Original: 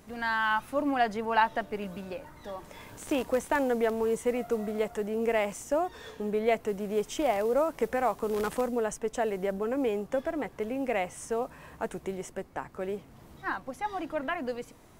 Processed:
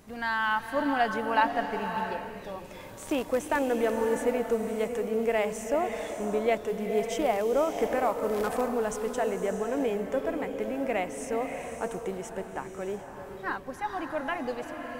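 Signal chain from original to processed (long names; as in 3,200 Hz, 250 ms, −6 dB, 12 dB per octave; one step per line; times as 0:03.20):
slow-attack reverb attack 620 ms, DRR 5.5 dB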